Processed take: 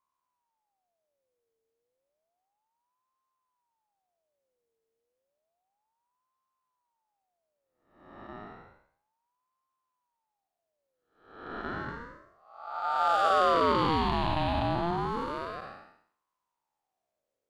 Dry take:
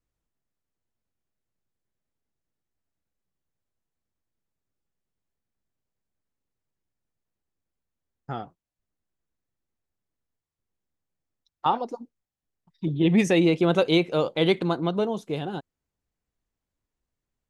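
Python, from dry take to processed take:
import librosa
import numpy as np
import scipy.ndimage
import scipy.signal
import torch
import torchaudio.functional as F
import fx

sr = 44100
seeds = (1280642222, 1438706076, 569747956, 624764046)

y = fx.spec_blur(x, sr, span_ms=445.0)
y = fx.ring_lfo(y, sr, carrier_hz=750.0, swing_pct=40, hz=0.31)
y = y * librosa.db_to_amplitude(2.5)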